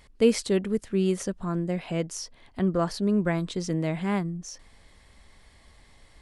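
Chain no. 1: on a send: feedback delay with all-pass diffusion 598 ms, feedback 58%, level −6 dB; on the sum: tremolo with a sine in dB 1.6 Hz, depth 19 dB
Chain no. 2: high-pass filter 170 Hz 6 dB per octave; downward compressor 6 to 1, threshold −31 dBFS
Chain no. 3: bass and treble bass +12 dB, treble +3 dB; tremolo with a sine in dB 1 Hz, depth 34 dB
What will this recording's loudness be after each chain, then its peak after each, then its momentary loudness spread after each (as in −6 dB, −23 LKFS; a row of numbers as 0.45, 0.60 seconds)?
−33.0, −36.5, −25.5 LKFS; −14.0, −20.0, −9.0 dBFS; 15, 4, 22 LU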